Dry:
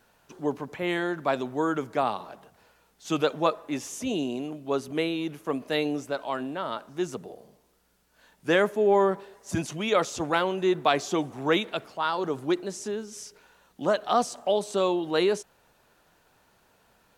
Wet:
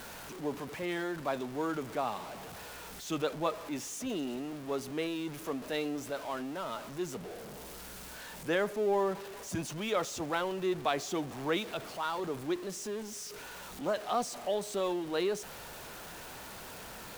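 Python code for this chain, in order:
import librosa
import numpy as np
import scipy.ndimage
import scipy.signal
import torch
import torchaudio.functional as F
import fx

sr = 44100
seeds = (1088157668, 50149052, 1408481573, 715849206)

y = x + 0.5 * 10.0 ** (-31.5 / 20.0) * np.sign(x)
y = y * librosa.db_to_amplitude(-9.0)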